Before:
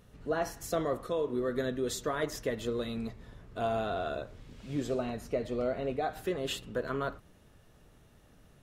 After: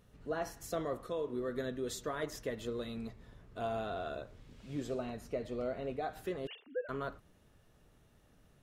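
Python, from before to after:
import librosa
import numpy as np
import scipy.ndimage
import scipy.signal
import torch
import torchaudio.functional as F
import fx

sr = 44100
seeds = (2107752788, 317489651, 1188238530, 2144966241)

y = fx.sine_speech(x, sr, at=(6.47, 6.89))
y = y * librosa.db_to_amplitude(-5.5)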